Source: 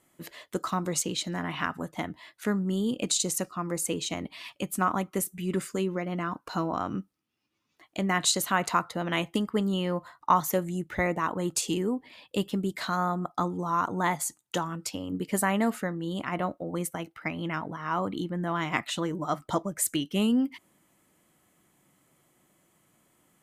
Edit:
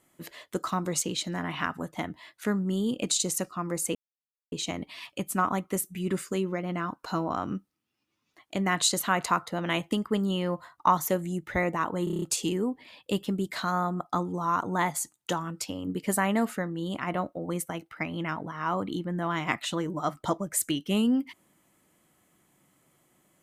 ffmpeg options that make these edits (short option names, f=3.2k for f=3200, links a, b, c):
-filter_complex "[0:a]asplit=8[a][b][c][d][e][f][g][h];[a]atrim=end=3.95,asetpts=PTS-STARTPTS,afade=t=out:st=3.946:d=0.004:c=hsin,apad=pad_dur=0.57[i];[b]atrim=start=3.95:end=11.502,asetpts=PTS-STARTPTS,afade=t=in:d=0.004:c=hsin[j];[c]atrim=start=11.468:end=11.502[k];[d]atrim=start=11.468:end=11.502[l];[e]atrim=start=11.468:end=11.502[m];[f]atrim=start=11.468:end=11.502[n];[g]atrim=start=11.468:end=11.502[o];[h]atrim=start=11.468[p];[i][j]concat=n=2:v=0:a=1[q];[q][k]acrossfade=d=0.004:c1=hsin:c2=hsin[r];[r][l]acrossfade=d=0.004:c1=hsin:c2=hsin[s];[s][m]acrossfade=d=0.004:c1=hsin:c2=hsin[t];[t][n]acrossfade=d=0.004:c1=hsin:c2=hsin[u];[u][o]acrossfade=d=0.004:c1=hsin:c2=hsin[v];[v][p]acrossfade=d=0.004:c1=hsin:c2=hsin"